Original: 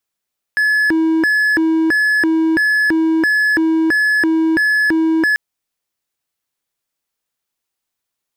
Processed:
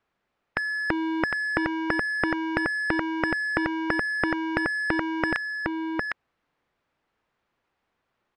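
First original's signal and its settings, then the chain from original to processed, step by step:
siren hi-lo 322–1,710 Hz 1.5 per second triangle −9.5 dBFS 4.79 s
low-pass filter 1,800 Hz 12 dB per octave
on a send: single-tap delay 757 ms −5.5 dB
on the sum: every bin compressed towards the loudest bin 2 to 1

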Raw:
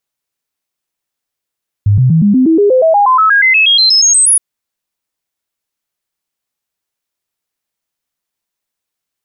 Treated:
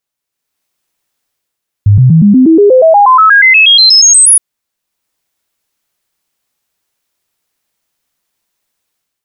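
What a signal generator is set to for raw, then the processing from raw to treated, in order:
stepped sweep 102 Hz up, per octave 3, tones 21, 0.12 s, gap 0.00 s −5 dBFS
automatic gain control gain up to 10 dB

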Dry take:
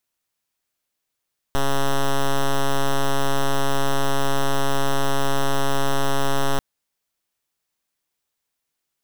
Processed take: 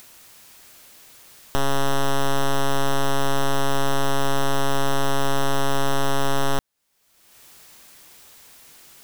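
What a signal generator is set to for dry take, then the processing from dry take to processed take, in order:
pulse wave 138 Hz, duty 6% −18 dBFS 5.04 s
upward compression, threshold −23 dBFS

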